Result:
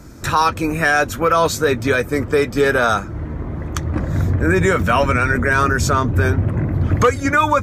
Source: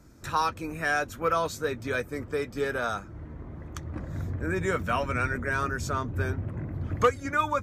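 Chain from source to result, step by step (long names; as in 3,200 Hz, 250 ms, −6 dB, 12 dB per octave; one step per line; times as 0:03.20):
boost into a limiter +20 dB
level −5 dB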